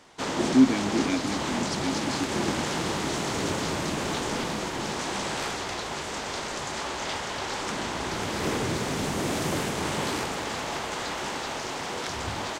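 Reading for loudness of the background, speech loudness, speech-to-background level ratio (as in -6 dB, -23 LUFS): -29.5 LUFS, -27.5 LUFS, 2.0 dB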